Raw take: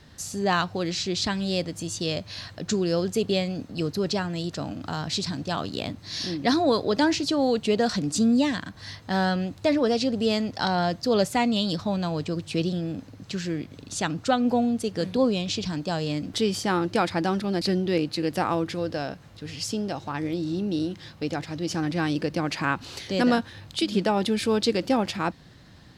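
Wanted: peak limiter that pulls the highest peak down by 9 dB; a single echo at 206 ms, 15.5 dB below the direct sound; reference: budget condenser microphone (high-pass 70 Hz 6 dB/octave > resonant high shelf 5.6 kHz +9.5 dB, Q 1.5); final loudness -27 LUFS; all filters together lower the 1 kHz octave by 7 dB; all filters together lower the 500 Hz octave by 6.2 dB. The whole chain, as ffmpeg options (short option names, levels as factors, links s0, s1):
-af "equalizer=f=500:t=o:g=-6,equalizer=f=1000:t=o:g=-7,alimiter=limit=0.0891:level=0:latency=1,highpass=f=70:p=1,highshelf=f=5600:t=q:w=1.5:g=9.5,aecho=1:1:206:0.168,volume=1.41"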